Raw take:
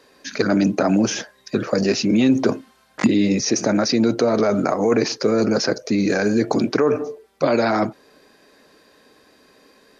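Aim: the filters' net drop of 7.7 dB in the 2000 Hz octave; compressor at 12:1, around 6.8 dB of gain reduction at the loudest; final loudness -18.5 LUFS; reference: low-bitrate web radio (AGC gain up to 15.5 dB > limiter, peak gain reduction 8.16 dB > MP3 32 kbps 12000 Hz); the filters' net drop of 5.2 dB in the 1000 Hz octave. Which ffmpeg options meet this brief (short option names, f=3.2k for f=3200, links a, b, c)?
-af "equalizer=f=1k:t=o:g=-5.5,equalizer=f=2k:t=o:g=-8.5,acompressor=threshold=-18dB:ratio=12,dynaudnorm=m=15.5dB,alimiter=limit=-18dB:level=0:latency=1,volume=9.5dB" -ar 12000 -c:a libmp3lame -b:a 32k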